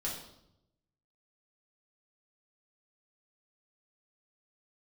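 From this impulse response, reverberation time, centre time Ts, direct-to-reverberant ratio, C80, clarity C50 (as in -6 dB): 0.80 s, 39 ms, -5.0 dB, 7.5 dB, 4.0 dB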